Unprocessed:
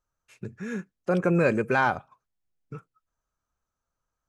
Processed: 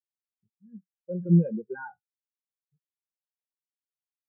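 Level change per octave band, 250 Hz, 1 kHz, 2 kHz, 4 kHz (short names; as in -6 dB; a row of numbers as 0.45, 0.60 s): +0.5 dB, -19.0 dB, -17.5 dB, under -35 dB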